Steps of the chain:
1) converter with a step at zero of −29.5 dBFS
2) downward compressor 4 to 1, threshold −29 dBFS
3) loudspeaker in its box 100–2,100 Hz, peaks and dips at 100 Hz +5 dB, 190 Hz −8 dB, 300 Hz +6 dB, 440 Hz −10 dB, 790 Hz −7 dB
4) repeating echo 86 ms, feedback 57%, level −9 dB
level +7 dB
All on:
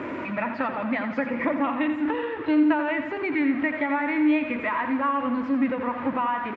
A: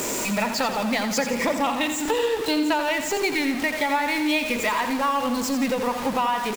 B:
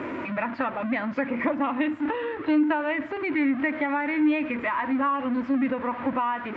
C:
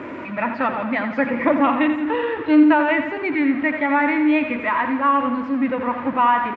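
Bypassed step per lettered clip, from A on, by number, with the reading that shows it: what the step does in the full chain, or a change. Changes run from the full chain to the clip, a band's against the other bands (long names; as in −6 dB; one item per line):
3, 4 kHz band +13.0 dB
4, echo-to-direct ratio −7.5 dB to none audible
2, change in momentary loudness spread +2 LU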